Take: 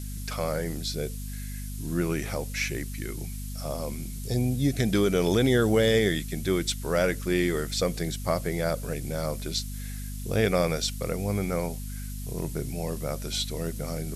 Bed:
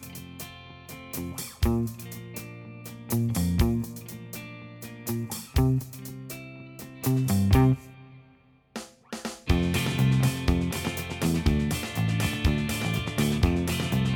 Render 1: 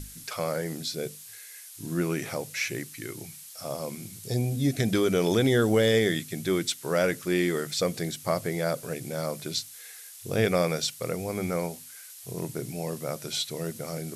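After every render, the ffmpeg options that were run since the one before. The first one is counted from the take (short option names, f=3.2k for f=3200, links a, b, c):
-af "bandreject=f=50:t=h:w=6,bandreject=f=100:t=h:w=6,bandreject=f=150:t=h:w=6,bandreject=f=200:t=h:w=6,bandreject=f=250:t=h:w=6"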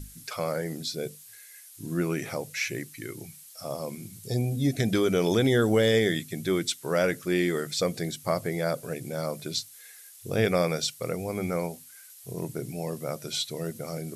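-af "afftdn=nr=6:nf=-46"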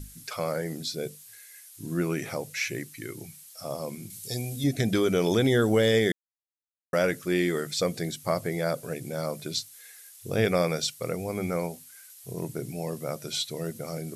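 -filter_complex "[0:a]asettb=1/sr,asplit=3[a][b][c];[a]atrim=end=4.104[d];[b]atrim=start=4.1:end=4.64,asetpts=PTS-STARTPTS,afade=t=in:d=0.004:c=qsin,afade=t=out:st=0.536:d=0.004:c=qsin,tiltshelf=f=1.4k:g=-6.5[e];[c]atrim=start=4.636[f];[d][e]acrossfade=d=0.004:c1=hsin:c2=qsin[g];[g][f]acrossfade=d=0.004:c1=qsin:c2=hsin,asplit=3[h][i][j];[h]atrim=end=6.12,asetpts=PTS-STARTPTS,afade=t=out:st=6.116:d=0.004:c=hsin[k];[i]atrim=start=6.12:end=6.93,asetpts=PTS-STARTPTS,volume=0[l];[j]atrim=start=6.93,asetpts=PTS-STARTPTS,afade=t=in:d=0.004:c=hsin[m];[k][l][m]concat=n=3:v=0:a=1"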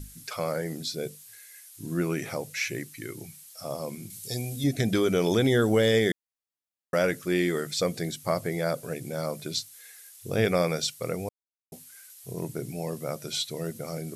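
-filter_complex "[0:a]asplit=3[a][b][c];[a]atrim=end=11.29,asetpts=PTS-STARTPTS,afade=t=out:st=11.286:d=0.004:c=hsin[d];[b]atrim=start=11.29:end=11.72,asetpts=PTS-STARTPTS,volume=0[e];[c]atrim=start=11.72,asetpts=PTS-STARTPTS,afade=t=in:d=0.004:c=hsin[f];[d][e][f]concat=n=3:v=0:a=1"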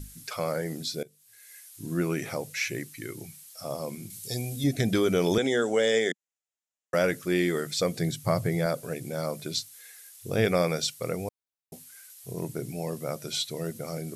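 -filter_complex "[0:a]asettb=1/sr,asplit=3[a][b][c];[a]atrim=end=5.384[d];[b]atrim=start=5.38:end=6.94,asetpts=PTS-STARTPTS,afade=t=in:d=0.004:c=qsin,afade=t=out:st=1.556:d=0.004:c=qsin,highpass=f=190:w=0.5412,highpass=f=190:w=1.3066,equalizer=f=200:t=q:w=4:g=-9,equalizer=f=320:t=q:w=4:g=-7,equalizer=f=1.1k:t=q:w=4:g=-4,equalizer=f=4.4k:t=q:w=4:g=-7,equalizer=f=7k:t=q:w=4:g=7,lowpass=f=8.7k:w=0.5412,lowpass=f=8.7k:w=1.3066[e];[c]atrim=start=6.936[f];[d][e]acrossfade=d=0.004:c1=hsin:c2=qsin[g];[g][f]acrossfade=d=0.004:c1=qsin:c2=hsin,asettb=1/sr,asplit=3[h][i][j];[h]atrim=end=8.004[k];[i]atrim=start=8:end=8.66,asetpts=PTS-STARTPTS,afade=t=in:d=0.004:c=qsin,afade=t=out:st=0.656:d=0.004:c=qsin,equalizer=f=120:t=o:w=0.77:g=12.5[l];[j]atrim=start=8.656[m];[k][l]acrossfade=d=0.004:c1=hsin:c2=qsin[n];[n][m]acrossfade=d=0.004:c1=qsin:c2=hsin,asplit=2[o][p];[o]atrim=end=1.03,asetpts=PTS-STARTPTS,afade=t=out:st=1.026:d=0.004:c=hsin:silence=0.105925[q];[p]atrim=start=1.03,asetpts=PTS-STARTPTS,afade=t=in:d=0.49:c=qua:silence=0.105925[r];[q][r]concat=n=2:v=0:a=1"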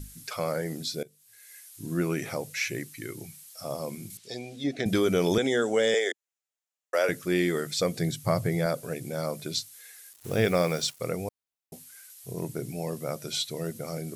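-filter_complex "[0:a]asettb=1/sr,asplit=3[a][b][c];[a]atrim=end=4.174[d];[b]atrim=start=4.17:end=4.86,asetpts=PTS-STARTPTS,afade=t=in:d=0.004:c=qsin,afade=t=out:st=0.686:d=0.004:c=qsin,highpass=270,lowpass=4.1k[e];[c]atrim=start=4.856[f];[d][e]acrossfade=d=0.004:c1=hsin:c2=qsin[g];[g][f]acrossfade=d=0.004:c1=qsin:c2=hsin,asettb=1/sr,asplit=3[h][i][j];[h]atrim=end=5.944[k];[i]atrim=start=5.94:end=7.09,asetpts=PTS-STARTPTS,afade=t=in:d=0.004:c=qsin,afade=t=out:st=1.146:d=0.004:c=qsin,highpass=f=380:w=0.5412,highpass=f=380:w=1.3066[l];[j]atrim=start=7.086[m];[k][l]acrossfade=d=0.004:c1=hsin:c2=qsin[n];[n][m]acrossfade=d=0.004:c1=qsin:c2=hsin,asettb=1/sr,asplit=3[o][p][q];[o]atrim=end=10.134[r];[p]atrim=start=10.13:end=11,asetpts=PTS-STARTPTS,afade=t=in:d=0.004:c=qsin,afade=t=out:st=0.866:d=0.004:c=qsin,acrusher=bits=6:mix=0:aa=0.5[s];[q]atrim=start=10.996[t];[r][s]acrossfade=d=0.004:c1=hsin:c2=qsin[u];[u][t]acrossfade=d=0.004:c1=qsin:c2=hsin"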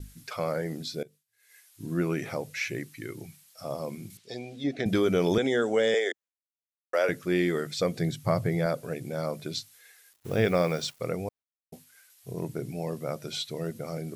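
-af "agate=range=-33dB:threshold=-46dB:ratio=3:detection=peak,equalizer=f=10k:t=o:w=1.8:g=-8.5"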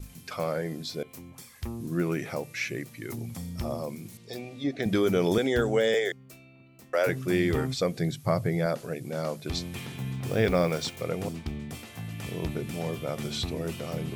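-filter_complex "[1:a]volume=-11.5dB[a];[0:a][a]amix=inputs=2:normalize=0"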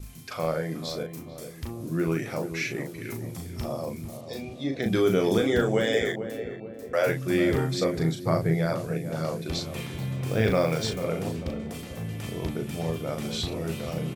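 -filter_complex "[0:a]asplit=2[a][b];[b]adelay=37,volume=-5dB[c];[a][c]amix=inputs=2:normalize=0,asplit=2[d][e];[e]adelay=442,lowpass=f=920:p=1,volume=-8.5dB,asplit=2[f][g];[g]adelay=442,lowpass=f=920:p=1,volume=0.53,asplit=2[h][i];[i]adelay=442,lowpass=f=920:p=1,volume=0.53,asplit=2[j][k];[k]adelay=442,lowpass=f=920:p=1,volume=0.53,asplit=2[l][m];[m]adelay=442,lowpass=f=920:p=1,volume=0.53,asplit=2[n][o];[o]adelay=442,lowpass=f=920:p=1,volume=0.53[p];[f][h][j][l][n][p]amix=inputs=6:normalize=0[q];[d][q]amix=inputs=2:normalize=0"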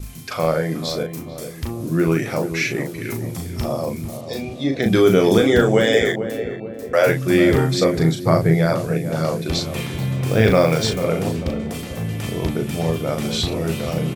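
-af "volume=8.5dB"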